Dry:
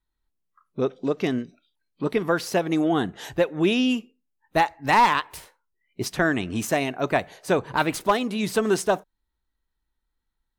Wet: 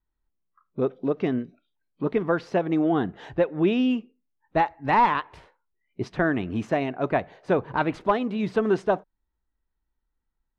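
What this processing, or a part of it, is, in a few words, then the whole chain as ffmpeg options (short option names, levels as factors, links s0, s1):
phone in a pocket: -af "lowpass=3500,highshelf=f=2100:g=-9.5"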